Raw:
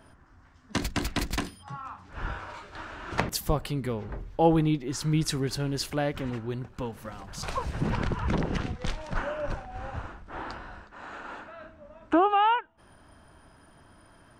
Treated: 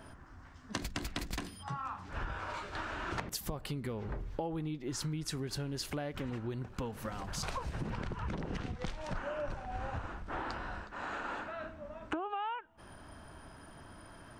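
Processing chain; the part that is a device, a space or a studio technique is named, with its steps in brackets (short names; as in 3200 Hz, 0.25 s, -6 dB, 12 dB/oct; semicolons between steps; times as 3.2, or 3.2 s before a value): serial compression, leveller first (compressor 2:1, threshold -29 dBFS, peak gain reduction 7.5 dB; compressor 6:1, threshold -38 dBFS, peak gain reduction 14.5 dB); gain +3 dB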